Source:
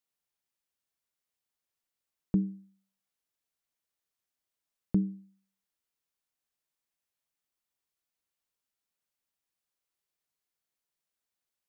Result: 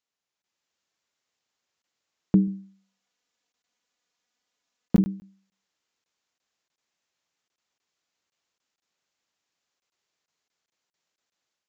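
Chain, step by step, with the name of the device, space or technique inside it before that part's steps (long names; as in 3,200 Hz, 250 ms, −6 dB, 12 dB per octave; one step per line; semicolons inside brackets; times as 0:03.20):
call with lost packets (high-pass filter 160 Hz 6 dB per octave; downsampling to 16,000 Hz; automatic gain control gain up to 7 dB; dropped packets)
0:02.47–0:05.01: comb filter 4.1 ms, depth 51%
level +3 dB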